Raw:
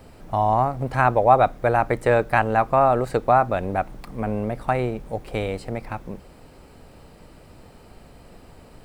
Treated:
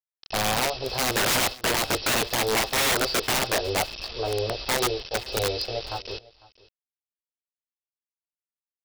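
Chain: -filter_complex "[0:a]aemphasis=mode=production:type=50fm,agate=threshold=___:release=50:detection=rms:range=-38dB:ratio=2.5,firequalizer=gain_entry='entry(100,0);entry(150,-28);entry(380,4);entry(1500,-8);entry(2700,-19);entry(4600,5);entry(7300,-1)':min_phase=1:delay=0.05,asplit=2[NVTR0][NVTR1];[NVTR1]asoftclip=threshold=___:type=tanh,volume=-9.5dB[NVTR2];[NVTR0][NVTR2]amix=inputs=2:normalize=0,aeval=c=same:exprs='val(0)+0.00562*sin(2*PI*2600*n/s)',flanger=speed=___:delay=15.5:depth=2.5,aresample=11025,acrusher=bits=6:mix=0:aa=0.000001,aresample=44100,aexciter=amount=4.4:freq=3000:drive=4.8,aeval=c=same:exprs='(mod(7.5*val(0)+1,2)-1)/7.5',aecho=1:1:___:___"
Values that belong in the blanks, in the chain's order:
-35dB, -14dB, 1.2, 501, 0.0794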